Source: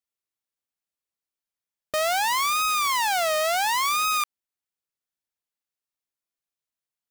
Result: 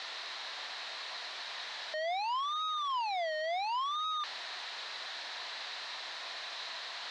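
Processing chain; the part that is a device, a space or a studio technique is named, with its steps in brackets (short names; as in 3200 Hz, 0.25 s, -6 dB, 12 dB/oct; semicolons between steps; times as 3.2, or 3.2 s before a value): home computer beeper (infinite clipping; speaker cabinet 640–4600 Hz, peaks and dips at 690 Hz +6 dB, 1000 Hz +5 dB, 1800 Hz +6 dB, 4000 Hz +9 dB); gain -8.5 dB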